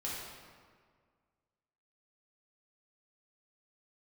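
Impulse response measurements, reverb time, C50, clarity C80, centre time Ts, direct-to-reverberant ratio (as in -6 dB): 1.8 s, -1.5 dB, 1.0 dB, 0.101 s, -7.0 dB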